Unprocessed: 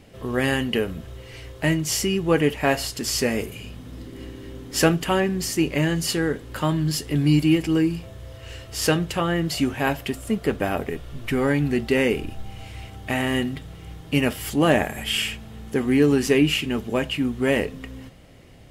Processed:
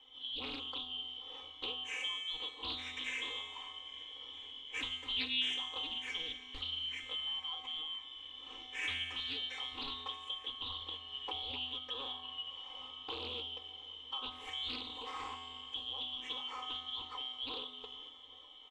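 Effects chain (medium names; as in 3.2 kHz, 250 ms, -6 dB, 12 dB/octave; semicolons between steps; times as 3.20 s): four frequency bands reordered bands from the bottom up 2413; low-pass 5.4 kHz 24 dB/octave; hum notches 60/120/180/240/300/360/420 Hz; comb 3.9 ms, depth 86%; compression 6:1, threshold -26 dBFS, peak gain reduction 15 dB; static phaser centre 960 Hz, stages 8; feedback comb 84 Hz, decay 1.7 s, harmonics odd, mix 90%; on a send: shuffle delay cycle 809 ms, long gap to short 1.5:1, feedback 73%, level -21.5 dB; on the sum: loudspeaker Doppler distortion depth 0.28 ms; trim +9 dB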